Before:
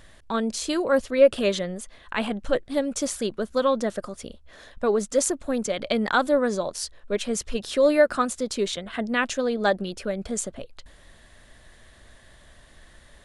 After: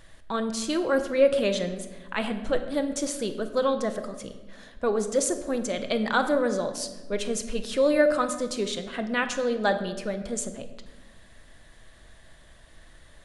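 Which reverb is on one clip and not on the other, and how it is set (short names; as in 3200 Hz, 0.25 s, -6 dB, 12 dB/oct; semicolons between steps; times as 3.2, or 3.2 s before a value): shoebox room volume 830 m³, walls mixed, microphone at 0.66 m; gain -2.5 dB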